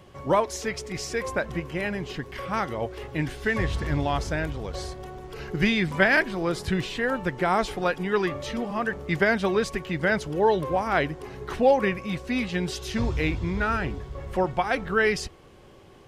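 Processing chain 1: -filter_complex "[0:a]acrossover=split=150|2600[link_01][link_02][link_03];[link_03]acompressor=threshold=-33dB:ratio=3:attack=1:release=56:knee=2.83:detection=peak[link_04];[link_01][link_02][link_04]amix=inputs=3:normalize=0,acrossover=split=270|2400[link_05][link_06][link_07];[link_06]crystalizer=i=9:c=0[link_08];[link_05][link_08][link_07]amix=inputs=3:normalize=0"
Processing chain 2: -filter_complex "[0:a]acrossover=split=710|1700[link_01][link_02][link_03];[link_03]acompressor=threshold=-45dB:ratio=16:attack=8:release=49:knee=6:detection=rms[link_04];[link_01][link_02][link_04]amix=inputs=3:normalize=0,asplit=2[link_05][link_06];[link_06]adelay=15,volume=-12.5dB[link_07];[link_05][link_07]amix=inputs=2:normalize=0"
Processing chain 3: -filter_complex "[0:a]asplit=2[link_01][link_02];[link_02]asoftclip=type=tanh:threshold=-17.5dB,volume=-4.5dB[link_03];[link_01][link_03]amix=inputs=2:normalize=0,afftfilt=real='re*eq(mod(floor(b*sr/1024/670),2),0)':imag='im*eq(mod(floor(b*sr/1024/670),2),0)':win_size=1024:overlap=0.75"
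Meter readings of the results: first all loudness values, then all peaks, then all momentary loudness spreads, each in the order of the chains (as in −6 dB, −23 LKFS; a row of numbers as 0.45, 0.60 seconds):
−23.0, −27.0, −24.0 LKFS; −2.0, −7.0, −5.5 dBFS; 12, 11, 10 LU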